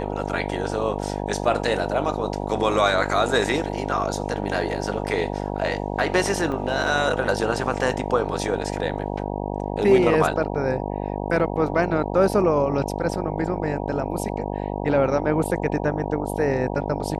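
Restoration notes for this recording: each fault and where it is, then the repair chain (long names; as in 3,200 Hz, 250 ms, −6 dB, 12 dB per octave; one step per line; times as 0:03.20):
mains buzz 50 Hz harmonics 19 −28 dBFS
0:06.52: drop-out 2.7 ms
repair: hum removal 50 Hz, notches 19
repair the gap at 0:06.52, 2.7 ms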